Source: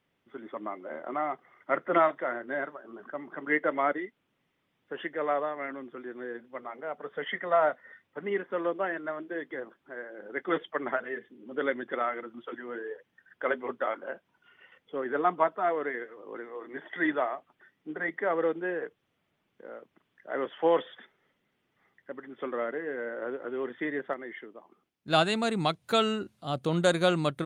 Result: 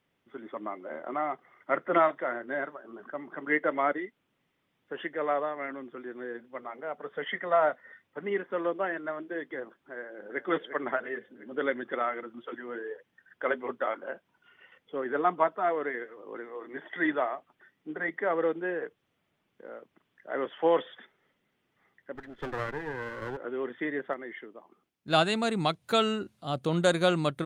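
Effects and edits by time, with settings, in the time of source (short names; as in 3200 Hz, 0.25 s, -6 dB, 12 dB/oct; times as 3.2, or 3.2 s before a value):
9.95–10.48 echo throw 0.35 s, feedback 60%, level -10.5 dB
22.15–23.37 minimum comb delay 0.58 ms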